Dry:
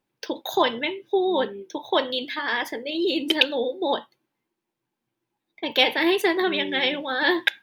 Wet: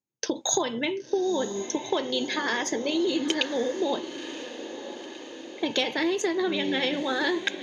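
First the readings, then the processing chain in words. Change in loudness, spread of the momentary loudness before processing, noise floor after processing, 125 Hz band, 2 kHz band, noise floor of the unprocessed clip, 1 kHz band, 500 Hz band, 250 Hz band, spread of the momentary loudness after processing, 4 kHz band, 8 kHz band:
-4.0 dB, 9 LU, -43 dBFS, n/a, -5.5 dB, -83 dBFS, -5.5 dB, -2.5 dB, -0.5 dB, 12 LU, -5.0 dB, +14.0 dB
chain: HPF 74 Hz; gate with hold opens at -41 dBFS; low shelf 390 Hz +11.5 dB; compressor, threshold -24 dBFS, peak gain reduction 12.5 dB; synth low-pass 6600 Hz, resonance Q 12; diffused feedback echo 1 s, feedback 59%, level -11.5 dB

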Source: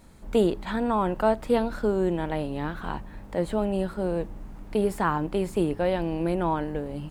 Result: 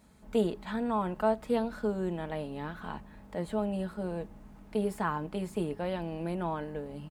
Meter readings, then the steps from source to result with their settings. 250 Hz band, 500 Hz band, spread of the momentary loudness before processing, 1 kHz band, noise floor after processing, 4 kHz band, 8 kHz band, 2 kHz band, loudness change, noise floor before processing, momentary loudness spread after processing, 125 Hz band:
-6.0 dB, -7.0 dB, 8 LU, -6.5 dB, -52 dBFS, -6.5 dB, -6.5 dB, -6.5 dB, -6.5 dB, -43 dBFS, 10 LU, -6.0 dB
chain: HPF 55 Hz 12 dB/oct; notch 390 Hz, Q 12; comb 4.7 ms, depth 35%; gain -7 dB

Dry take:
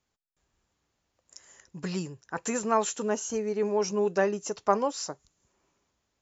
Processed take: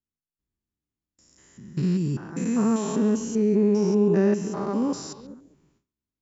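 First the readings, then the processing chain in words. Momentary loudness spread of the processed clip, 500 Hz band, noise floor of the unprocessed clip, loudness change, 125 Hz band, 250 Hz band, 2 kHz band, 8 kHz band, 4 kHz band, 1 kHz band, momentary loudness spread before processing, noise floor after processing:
10 LU, +3.0 dB, -81 dBFS, +5.5 dB, +13.0 dB, +12.0 dB, -4.5 dB, n/a, -2.5 dB, -6.0 dB, 11 LU, under -85 dBFS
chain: stepped spectrum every 0.2 s; resonant low shelf 410 Hz +10.5 dB, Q 1.5; notch 6400 Hz, Q 24; delay with a stepping band-pass 0.137 s, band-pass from 2900 Hz, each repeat -1.4 oct, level -8.5 dB; gate with hold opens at -57 dBFS; gain +1.5 dB

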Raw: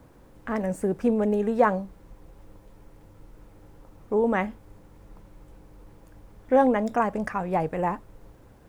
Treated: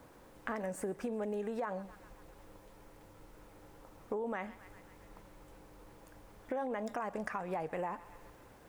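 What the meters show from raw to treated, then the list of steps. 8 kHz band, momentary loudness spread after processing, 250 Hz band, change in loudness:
n/a, 20 LU, -15.5 dB, -14.0 dB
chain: limiter -19 dBFS, peak gain reduction 10.5 dB; low shelf 290 Hz -11.5 dB; on a send: thinning echo 0.131 s, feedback 74%, high-pass 970 Hz, level -19.5 dB; on the sum: compressor 5:1, threshold -36 dBFS, peak gain reduction 10 dB; gain +1 dB

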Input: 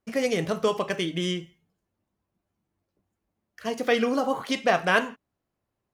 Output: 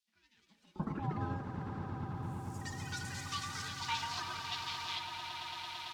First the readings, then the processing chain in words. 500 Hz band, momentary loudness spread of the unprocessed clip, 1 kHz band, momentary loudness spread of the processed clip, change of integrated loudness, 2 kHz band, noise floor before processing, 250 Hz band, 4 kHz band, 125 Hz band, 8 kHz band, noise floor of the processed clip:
-25.5 dB, 11 LU, -10.0 dB, 5 LU, -14.0 dB, -14.0 dB, -83 dBFS, -13.5 dB, -6.0 dB, -2.0 dB, -5.0 dB, -73 dBFS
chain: HPF 140 Hz; high shelf 3200 Hz -10.5 dB; comb 6.3 ms, depth 57%; added noise blue -49 dBFS; LFO high-pass square 0.66 Hz 370–4000 Hz; ring modulator 450 Hz; band-pass sweep 230 Hz -> 3800 Hz, 2.14–3.25; swelling echo 0.112 s, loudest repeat 8, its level -10 dB; echoes that change speed 0.237 s, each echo +4 st, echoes 3; gain +1 dB

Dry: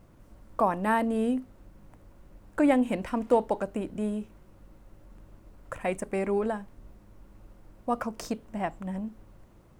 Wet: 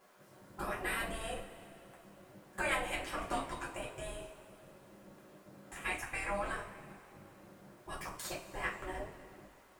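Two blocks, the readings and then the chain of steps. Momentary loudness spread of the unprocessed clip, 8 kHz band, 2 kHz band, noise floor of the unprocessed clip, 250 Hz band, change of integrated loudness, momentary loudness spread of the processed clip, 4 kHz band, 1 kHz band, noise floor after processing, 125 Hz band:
13 LU, +2.0 dB, +0.5 dB, -56 dBFS, -19.0 dB, -10.0 dB, 21 LU, +3.0 dB, -9.5 dB, -61 dBFS, -9.5 dB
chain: spectral gate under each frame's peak -15 dB weak; two-slope reverb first 0.3 s, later 2.6 s, from -19 dB, DRR -5.5 dB; gain -2.5 dB

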